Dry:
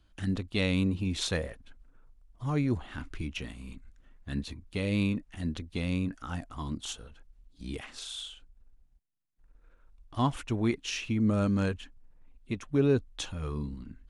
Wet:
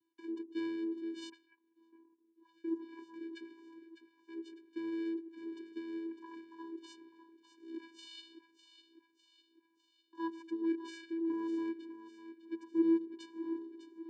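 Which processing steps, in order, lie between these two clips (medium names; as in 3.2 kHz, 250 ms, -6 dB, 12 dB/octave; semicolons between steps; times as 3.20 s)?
7.72–8.21 s: dynamic bell 4.1 kHz, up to +8 dB, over -55 dBFS, Q 1.4; two-band feedback delay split 340 Hz, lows 99 ms, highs 603 ms, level -11 dB; 1.29–2.64 s: auto-wah 420–4500 Hz, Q 4.5, up, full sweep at -26.5 dBFS; vocoder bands 8, square 330 Hz; trim -7 dB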